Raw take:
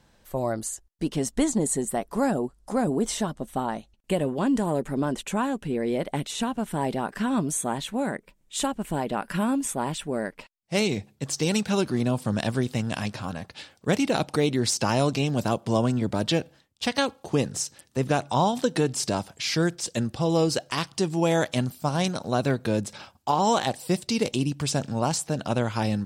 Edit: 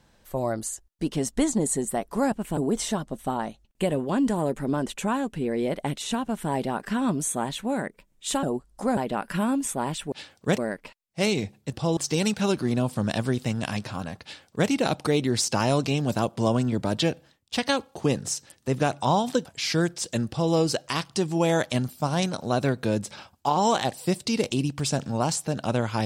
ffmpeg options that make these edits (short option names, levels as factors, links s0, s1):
-filter_complex "[0:a]asplit=10[s0][s1][s2][s3][s4][s5][s6][s7][s8][s9];[s0]atrim=end=2.322[s10];[s1]atrim=start=8.718:end=8.972[s11];[s2]atrim=start=2.858:end=8.722[s12];[s3]atrim=start=2.318:end=2.862[s13];[s4]atrim=start=8.968:end=10.122[s14];[s5]atrim=start=13.518:end=13.982[s15];[s6]atrim=start=10.118:end=11.262[s16];[s7]atrim=start=20.088:end=20.342[s17];[s8]atrim=start=11.258:end=18.742[s18];[s9]atrim=start=19.268[s19];[s10][s11]acrossfade=d=0.004:c1=hsin:c2=hsin[s20];[s20][s12]acrossfade=d=0.004:c1=hsin:c2=hsin[s21];[s21][s13]acrossfade=d=0.004:c1=hsin:c2=hsin[s22];[s22][s14]acrossfade=d=0.004:c1=hsin:c2=hsin[s23];[s23][s15]acrossfade=d=0.004:c1=hsin:c2=hsin[s24];[s24][s16]acrossfade=d=0.004:c1=hsin:c2=hsin[s25];[s25][s17]acrossfade=d=0.004:c1=hsin:c2=hsin[s26];[s26][s18]acrossfade=d=0.004:c1=hsin:c2=hsin[s27];[s27][s19]acrossfade=d=0.004:c1=hsin:c2=hsin"